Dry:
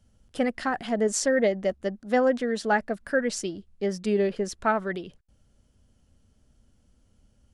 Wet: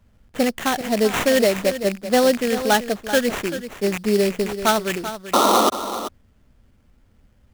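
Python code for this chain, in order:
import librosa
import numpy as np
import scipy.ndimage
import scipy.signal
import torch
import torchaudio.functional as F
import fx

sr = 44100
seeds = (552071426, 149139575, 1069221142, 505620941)

y = fx.rattle_buzz(x, sr, strikes_db=-37.0, level_db=-24.0)
y = fx.spec_paint(y, sr, seeds[0], shape='noise', start_s=5.33, length_s=0.37, low_hz=200.0, high_hz=1400.0, level_db=-21.0)
y = fx.sample_hold(y, sr, seeds[1], rate_hz=4900.0, jitter_pct=20)
y = y + 10.0 ** (-11.5 / 20.0) * np.pad(y, (int(386 * sr / 1000.0), 0))[:len(y)]
y = y * librosa.db_to_amplitude(5.5)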